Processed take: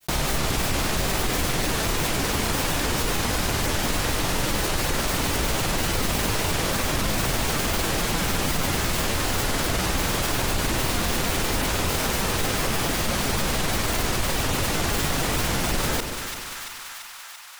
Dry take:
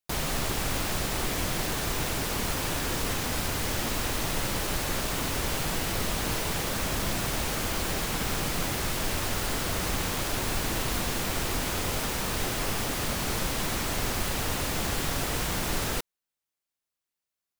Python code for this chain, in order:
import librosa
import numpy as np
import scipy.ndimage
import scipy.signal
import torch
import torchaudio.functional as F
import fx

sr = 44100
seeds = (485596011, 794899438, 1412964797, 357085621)

y = fx.granulator(x, sr, seeds[0], grain_ms=100.0, per_s=20.0, spray_ms=17.0, spread_st=0)
y = fx.echo_split(y, sr, split_hz=940.0, low_ms=133, high_ms=339, feedback_pct=52, wet_db=-13.5)
y = fx.env_flatten(y, sr, amount_pct=50)
y = y * 10.0 ** (4.5 / 20.0)